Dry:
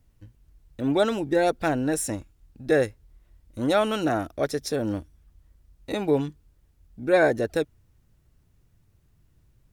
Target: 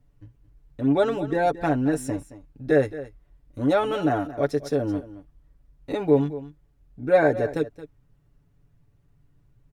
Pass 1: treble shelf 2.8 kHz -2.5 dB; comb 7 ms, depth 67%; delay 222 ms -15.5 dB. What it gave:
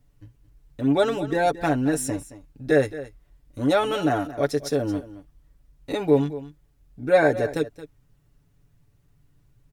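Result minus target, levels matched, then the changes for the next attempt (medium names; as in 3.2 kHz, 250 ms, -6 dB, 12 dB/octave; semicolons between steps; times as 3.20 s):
4 kHz band +5.5 dB
change: treble shelf 2.8 kHz -12 dB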